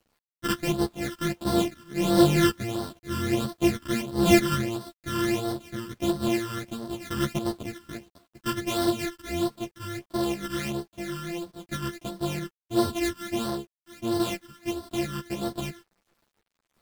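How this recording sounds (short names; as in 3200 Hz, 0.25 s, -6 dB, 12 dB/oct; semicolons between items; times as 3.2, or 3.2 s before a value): a buzz of ramps at a fixed pitch in blocks of 128 samples; phasing stages 12, 1.5 Hz, lowest notch 700–2400 Hz; a quantiser's noise floor 10-bit, dither none; a shimmering, thickened sound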